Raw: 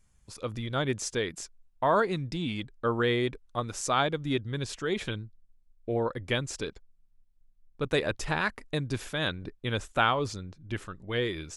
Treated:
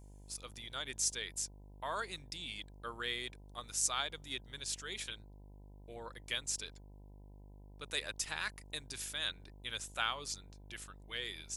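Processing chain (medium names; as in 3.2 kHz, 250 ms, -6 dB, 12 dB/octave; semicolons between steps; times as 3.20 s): pre-emphasis filter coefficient 0.97; mains buzz 50 Hz, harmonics 20, -58 dBFS -7 dB/octave; trim +3 dB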